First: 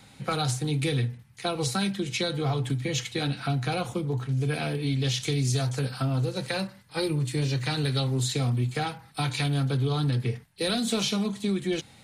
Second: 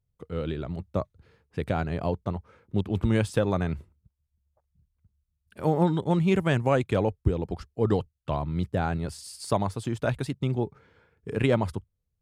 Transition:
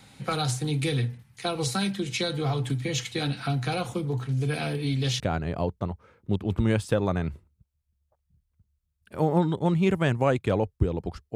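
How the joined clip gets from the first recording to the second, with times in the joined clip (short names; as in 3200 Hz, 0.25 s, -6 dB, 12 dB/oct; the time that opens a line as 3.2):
first
5.2 switch to second from 1.65 s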